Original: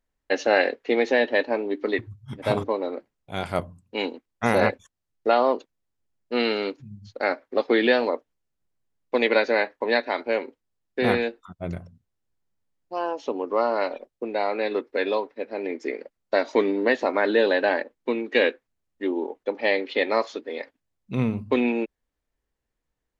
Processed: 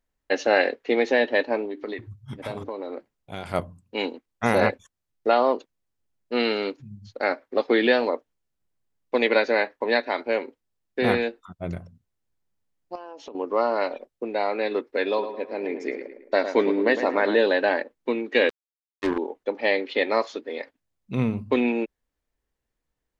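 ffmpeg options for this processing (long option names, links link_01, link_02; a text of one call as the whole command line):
ffmpeg -i in.wav -filter_complex "[0:a]asettb=1/sr,asplit=3[link_01][link_02][link_03];[link_01]atrim=end=1.654[link_04];[link_02]atrim=start=1.65:end=3.54,asetpts=PTS-STARTPTS,afade=type=in:duration=0.004:curve=qsin,afade=type=out:start_time=1.886:duration=0.004:curve=qsin,acompressor=threshold=-28dB:ratio=6:attack=3.2:release=140:knee=1:detection=peak[link_05];[link_03]atrim=start=3.536[link_06];[link_04][link_05]acrossfade=duration=0.004:curve1=hsin:curve2=qsin[link_07];[link_07][link_06]acrossfade=duration=0.004:curve1=qsin:curve2=hsin,asettb=1/sr,asplit=3[link_08][link_09][link_10];[link_08]atrim=end=12.954[link_11];[link_09]atrim=start=12.95:end=13.35,asetpts=PTS-STARTPTS,afade=type=in:duration=0.004:curve=qsin,afade=type=out:start_time=0.396:duration=0.004:curve=qsin,acompressor=threshold=-35dB:ratio=10:attack=3.2:release=140:knee=1:detection=peak[link_12];[link_10]atrim=start=13.346[link_13];[link_11][link_12]acrossfade=duration=0.004:curve1=hsin:curve2=qsin[link_14];[link_14][link_13]acrossfade=duration=0.004:curve1=qsin:curve2=hsin,asettb=1/sr,asplit=3[link_15][link_16][link_17];[link_15]atrim=end=15.074[link_18];[link_16]atrim=start=15.07:end=17.36,asetpts=PTS-STARTPTS,afade=type=in:duration=0.004:curve=qsin,afade=type=out:start_time=2.286:duration=0.004:curve=qsin,asplit=2[link_19][link_20];[link_20]adelay=108,lowpass=frequency=2700:poles=1,volume=-9dB,asplit=2[link_21][link_22];[link_22]adelay=108,lowpass=frequency=2700:poles=1,volume=0.48,asplit=2[link_23][link_24];[link_24]adelay=108,lowpass=frequency=2700:poles=1,volume=0.48,asplit=2[link_25][link_26];[link_26]adelay=108,lowpass=frequency=2700:poles=1,volume=0.48,asplit=2[link_27][link_28];[link_28]adelay=108,lowpass=frequency=2700:poles=1,volume=0.48[link_29];[link_19][link_21][link_23][link_25][link_27][link_29]amix=inputs=6:normalize=0,atrim=end_sample=100989[link_30];[link_17]atrim=start=17.356[link_31];[link_18][link_30]acrossfade=duration=0.004:curve1=hsin:curve2=qsin[link_32];[link_32][link_31]acrossfade=duration=0.004:curve1=qsin:curve2=hsin,asettb=1/sr,asplit=3[link_33][link_34][link_35];[link_33]atrim=end=18.494[link_36];[link_34]atrim=start=18.49:end=19.18,asetpts=PTS-STARTPTS,afade=type=in:duration=0.004:curve=qsin,afade=type=out:start_time=0.686:duration=0.004:curve=qsin,acrusher=bits=3:mix=0:aa=0.5[link_37];[link_35]atrim=start=19.176[link_38];[link_36][link_37]acrossfade=duration=0.004:curve1=hsin:curve2=qsin[link_39];[link_39][link_38]acrossfade=duration=0.004:curve1=qsin:curve2=hsin" out.wav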